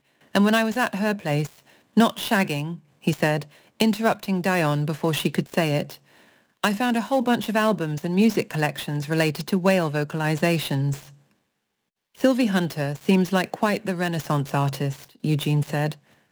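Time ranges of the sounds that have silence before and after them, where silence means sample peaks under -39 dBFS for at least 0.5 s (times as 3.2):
6.64–11.09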